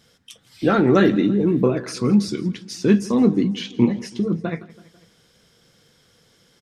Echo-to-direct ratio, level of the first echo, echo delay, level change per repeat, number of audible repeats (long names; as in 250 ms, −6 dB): −19.0 dB, −20.5 dB, 165 ms, −4.5 dB, 3